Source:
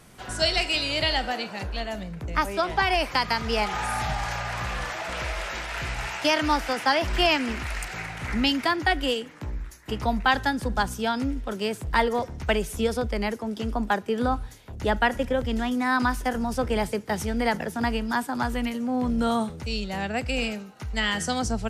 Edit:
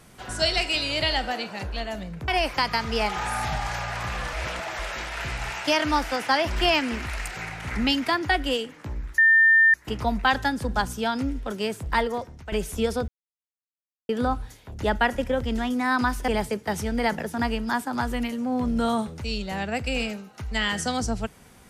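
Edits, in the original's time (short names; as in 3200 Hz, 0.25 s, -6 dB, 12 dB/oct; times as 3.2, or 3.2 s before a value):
2.28–2.85 cut
4.9–5.36 reverse
9.75 add tone 1800 Hz -13 dBFS 0.56 s
11.67–12.53 fade out equal-power, to -15.5 dB
13.09–14.1 mute
16.29–16.7 cut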